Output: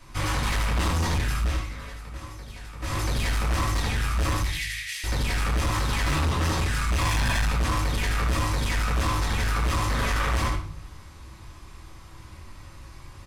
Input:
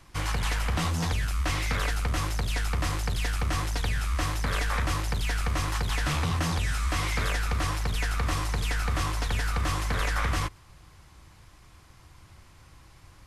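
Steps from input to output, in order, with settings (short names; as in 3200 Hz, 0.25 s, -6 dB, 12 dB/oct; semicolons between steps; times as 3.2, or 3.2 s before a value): soft clip -22 dBFS, distortion -18 dB; 1.36–2.99 dip -16 dB, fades 0.22 s; 4.41–5.04 Chebyshev high-pass 1900 Hz, order 5; 7.01–7.44 comb 1.2 ms, depth 98%; echo 75 ms -6 dB; reverb RT60 0.50 s, pre-delay 3 ms, DRR -5 dB; hard clip -20.5 dBFS, distortion -11 dB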